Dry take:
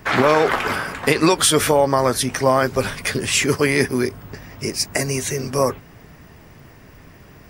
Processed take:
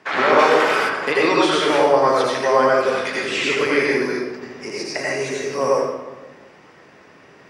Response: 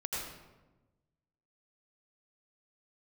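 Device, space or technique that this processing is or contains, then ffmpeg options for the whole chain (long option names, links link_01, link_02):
supermarket ceiling speaker: -filter_complex "[0:a]highpass=330,lowpass=5700[link_01];[1:a]atrim=start_sample=2205[link_02];[link_01][link_02]afir=irnorm=-1:irlink=0,acrossover=split=4400[link_03][link_04];[link_04]acompressor=threshold=-36dB:ratio=4:attack=1:release=60[link_05];[link_03][link_05]amix=inputs=2:normalize=0,asplit=3[link_06][link_07][link_08];[link_06]afade=type=out:start_time=0.38:duration=0.02[link_09];[link_07]aemphasis=mode=production:type=50kf,afade=type=in:start_time=0.38:duration=0.02,afade=type=out:start_time=0.88:duration=0.02[link_10];[link_08]afade=type=in:start_time=0.88:duration=0.02[link_11];[link_09][link_10][link_11]amix=inputs=3:normalize=0,volume=-1dB"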